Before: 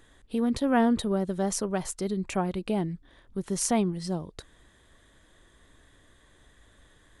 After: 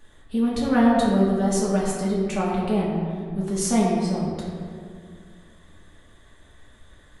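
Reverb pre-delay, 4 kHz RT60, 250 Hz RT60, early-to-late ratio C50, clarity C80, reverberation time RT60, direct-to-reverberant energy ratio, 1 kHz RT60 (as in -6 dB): 3 ms, 1.1 s, 2.6 s, 0.0 dB, 1.5 dB, 2.2 s, -7.0 dB, 2.0 s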